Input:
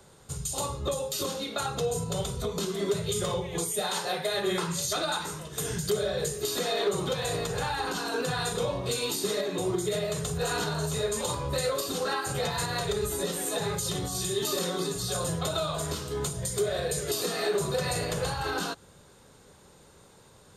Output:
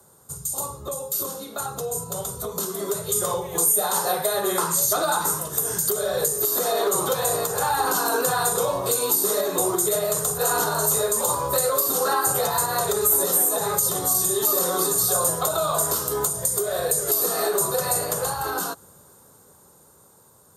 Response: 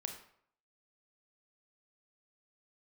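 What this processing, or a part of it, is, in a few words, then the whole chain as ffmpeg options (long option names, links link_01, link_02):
FM broadcast chain: -filter_complex "[0:a]highpass=70,dynaudnorm=framelen=610:gausssize=11:maxgain=12dB,acrossover=split=400|1300[link_01][link_02][link_03];[link_01]acompressor=threshold=-34dB:ratio=4[link_04];[link_02]acompressor=threshold=-20dB:ratio=4[link_05];[link_03]acompressor=threshold=-23dB:ratio=4[link_06];[link_04][link_05][link_06]amix=inputs=3:normalize=0,aemphasis=mode=production:type=50fm,alimiter=limit=-6.5dB:level=0:latency=1:release=306,asoftclip=type=hard:threshold=-8.5dB,lowpass=frequency=15000:width=0.5412,lowpass=frequency=15000:width=1.3066,aemphasis=mode=production:type=50fm,highshelf=frequency=1700:width_type=q:width=1.5:gain=-11,volume=-2dB"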